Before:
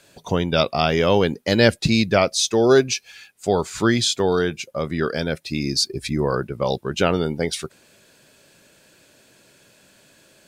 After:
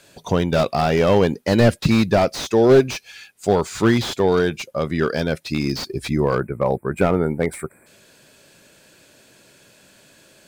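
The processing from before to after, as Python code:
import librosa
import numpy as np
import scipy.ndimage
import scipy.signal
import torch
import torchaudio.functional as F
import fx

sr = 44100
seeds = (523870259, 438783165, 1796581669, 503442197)

y = fx.spec_box(x, sr, start_s=6.38, length_s=1.49, low_hz=2500.0, high_hz=7400.0, gain_db=-25)
y = fx.slew_limit(y, sr, full_power_hz=140.0)
y = y * 10.0 ** (2.5 / 20.0)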